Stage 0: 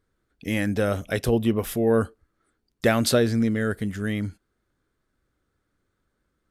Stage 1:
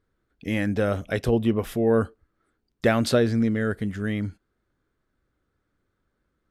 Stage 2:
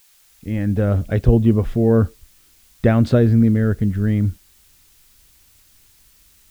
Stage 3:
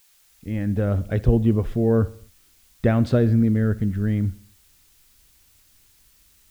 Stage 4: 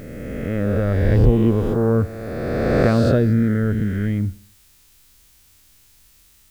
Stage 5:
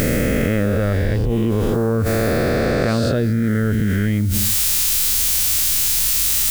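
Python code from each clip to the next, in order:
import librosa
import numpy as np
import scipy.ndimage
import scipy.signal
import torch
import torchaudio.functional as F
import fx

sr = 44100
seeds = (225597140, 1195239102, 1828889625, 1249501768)

y1 = fx.lowpass(x, sr, hz=3600.0, slope=6)
y2 = fx.fade_in_head(y1, sr, length_s=0.98)
y2 = fx.dmg_noise_colour(y2, sr, seeds[0], colour='violet', level_db=-38.0)
y2 = fx.riaa(y2, sr, side='playback')
y3 = fx.echo_feedback(y2, sr, ms=64, feedback_pct=53, wet_db=-20.5)
y3 = y3 * librosa.db_to_amplitude(-4.0)
y4 = fx.spec_swells(y3, sr, rise_s=2.29)
y5 = fx.high_shelf(y4, sr, hz=2300.0, db=10.5)
y5 = fx.env_flatten(y5, sr, amount_pct=100)
y5 = y5 * librosa.db_to_amplitude(-8.0)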